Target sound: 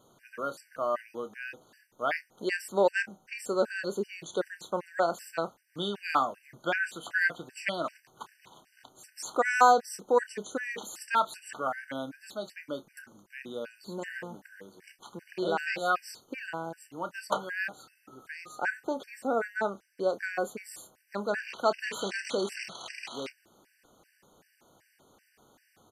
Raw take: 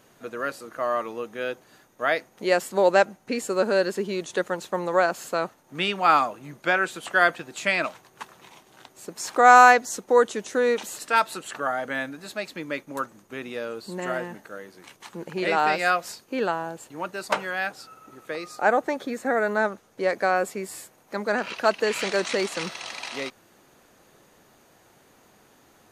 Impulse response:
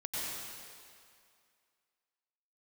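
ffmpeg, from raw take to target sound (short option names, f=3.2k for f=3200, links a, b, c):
-filter_complex "[0:a]asplit=2[a][b];[b]adelay=30,volume=-12.5dB[c];[a][c]amix=inputs=2:normalize=0,afftfilt=real='re*gt(sin(2*PI*2.6*pts/sr)*(1-2*mod(floor(b*sr/1024/1500),2)),0)':imag='im*gt(sin(2*PI*2.6*pts/sr)*(1-2*mod(floor(b*sr/1024/1500),2)),0)':win_size=1024:overlap=0.75,volume=-4dB"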